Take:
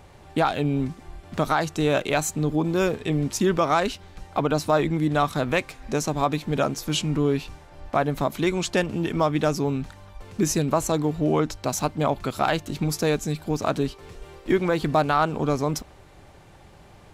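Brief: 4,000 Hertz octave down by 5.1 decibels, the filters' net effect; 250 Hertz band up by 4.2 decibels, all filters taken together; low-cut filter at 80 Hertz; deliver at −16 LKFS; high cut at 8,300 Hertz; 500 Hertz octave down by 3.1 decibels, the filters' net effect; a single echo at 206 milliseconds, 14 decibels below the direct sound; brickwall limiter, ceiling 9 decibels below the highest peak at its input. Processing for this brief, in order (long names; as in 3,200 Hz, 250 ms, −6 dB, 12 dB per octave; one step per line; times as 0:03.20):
high-pass filter 80 Hz
low-pass filter 8,300 Hz
parametric band 250 Hz +8.5 dB
parametric band 500 Hz −7 dB
parametric band 4,000 Hz −6.5 dB
brickwall limiter −17 dBFS
single-tap delay 206 ms −14 dB
level +10.5 dB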